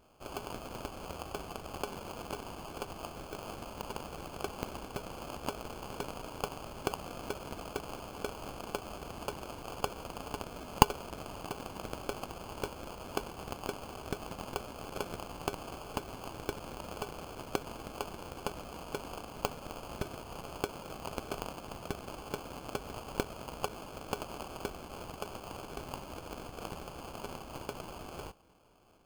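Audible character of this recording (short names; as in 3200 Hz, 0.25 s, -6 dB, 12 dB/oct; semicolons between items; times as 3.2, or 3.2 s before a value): aliases and images of a low sample rate 1900 Hz, jitter 0%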